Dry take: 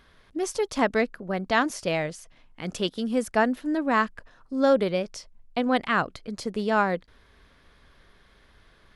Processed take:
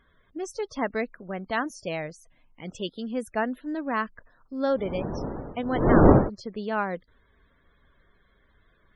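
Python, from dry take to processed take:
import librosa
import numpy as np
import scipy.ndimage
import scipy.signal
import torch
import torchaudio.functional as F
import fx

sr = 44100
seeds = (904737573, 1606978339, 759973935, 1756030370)

y = fx.dmg_wind(x, sr, seeds[0], corner_hz=460.0, level_db=-20.0, at=(4.66, 6.28), fade=0.02)
y = fx.spec_topn(y, sr, count=64)
y = y * librosa.db_to_amplitude(-5.0)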